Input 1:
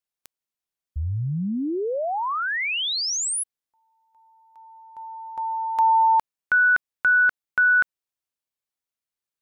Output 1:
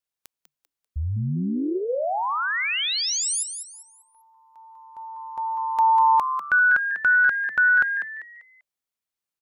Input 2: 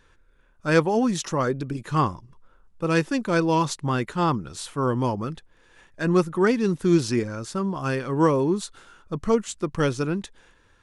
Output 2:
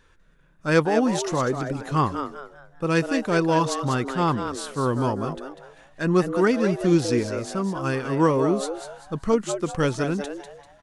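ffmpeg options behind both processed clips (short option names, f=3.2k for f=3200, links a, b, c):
-filter_complex "[0:a]asplit=5[a][b][c][d][e];[b]adelay=196,afreqshift=140,volume=-8.5dB[f];[c]adelay=392,afreqshift=280,volume=-18.4dB[g];[d]adelay=588,afreqshift=420,volume=-28.3dB[h];[e]adelay=784,afreqshift=560,volume=-38.2dB[i];[a][f][g][h][i]amix=inputs=5:normalize=0"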